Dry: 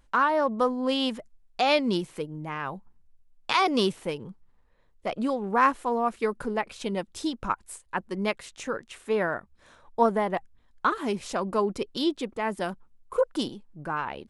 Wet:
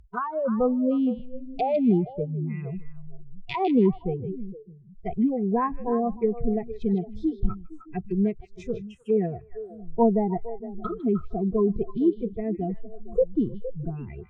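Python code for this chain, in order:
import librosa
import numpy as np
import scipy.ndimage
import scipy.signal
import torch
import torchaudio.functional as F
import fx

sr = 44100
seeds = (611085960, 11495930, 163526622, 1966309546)

p1 = fx.riaa(x, sr, side='playback')
p2 = fx.noise_reduce_blind(p1, sr, reduce_db=27)
p3 = fx.env_lowpass_down(p2, sr, base_hz=900.0, full_db=-25.0)
y = p3 + fx.echo_stepped(p3, sr, ms=154, hz=3500.0, octaves=-1.4, feedback_pct=70, wet_db=-6.5, dry=0)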